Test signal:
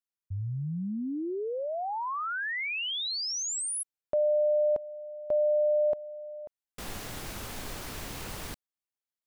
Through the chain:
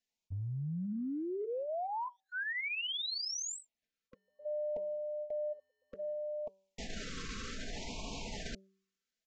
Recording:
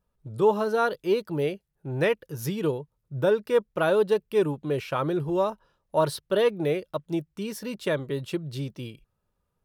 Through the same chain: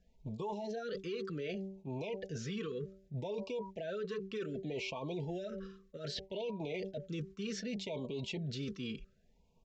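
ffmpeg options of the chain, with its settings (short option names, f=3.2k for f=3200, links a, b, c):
-filter_complex "[0:a]agate=range=-6dB:threshold=-36dB:ratio=16:release=438:detection=peak,bandreject=f=440:w=12,aecho=1:1:4.5:0.59,bandreject=f=192.6:t=h:w=4,bandreject=f=385.2:t=h:w=4,bandreject=f=577.8:t=h:w=4,bandreject=f=770.4:t=h:w=4,bandreject=f=963:t=h:w=4,acrossover=split=450|4300[a][b][c];[a]acompressor=threshold=-34dB:ratio=4[d];[b]acompressor=threshold=-25dB:ratio=4[e];[c]acompressor=threshold=-47dB:ratio=4[f];[d][e][f]amix=inputs=3:normalize=0,alimiter=level_in=1.5dB:limit=-24dB:level=0:latency=1:release=132,volume=-1.5dB,areverse,acompressor=threshold=-48dB:ratio=8:attack=1.5:release=110:knee=6:detection=peak,areverse,aresample=16000,aresample=44100,afftfilt=real='re*(1-between(b*sr/1024,720*pow(1600/720,0.5+0.5*sin(2*PI*0.65*pts/sr))/1.41,720*pow(1600/720,0.5+0.5*sin(2*PI*0.65*pts/sr))*1.41))':imag='im*(1-between(b*sr/1024,720*pow(1600/720,0.5+0.5*sin(2*PI*0.65*pts/sr))/1.41,720*pow(1600/720,0.5+0.5*sin(2*PI*0.65*pts/sr))*1.41))':win_size=1024:overlap=0.75,volume=12dB"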